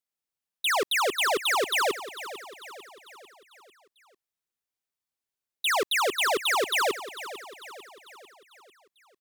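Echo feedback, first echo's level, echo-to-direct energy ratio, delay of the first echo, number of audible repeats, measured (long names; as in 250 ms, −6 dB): 51%, −14.0 dB, −12.5 dB, 447 ms, 4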